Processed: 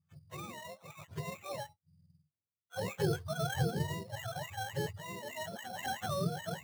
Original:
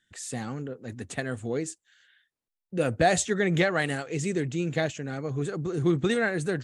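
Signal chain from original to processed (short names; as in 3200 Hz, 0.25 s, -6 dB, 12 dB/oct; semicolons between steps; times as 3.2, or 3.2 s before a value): spectrum mirrored in octaves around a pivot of 520 Hz; sample-rate reducer 4800 Hz, jitter 0%; gain -8.5 dB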